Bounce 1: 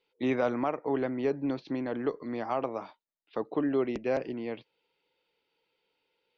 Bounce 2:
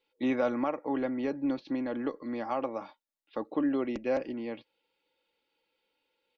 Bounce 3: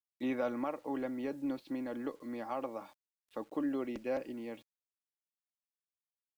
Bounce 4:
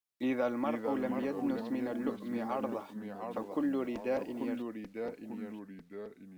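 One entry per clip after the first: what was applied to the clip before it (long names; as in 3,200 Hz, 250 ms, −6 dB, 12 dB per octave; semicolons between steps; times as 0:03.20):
comb filter 3.6 ms, depth 49%; level −2 dB
bit reduction 10 bits; level −6 dB
delay with pitch and tempo change per echo 403 ms, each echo −2 semitones, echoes 2, each echo −6 dB; level +2.5 dB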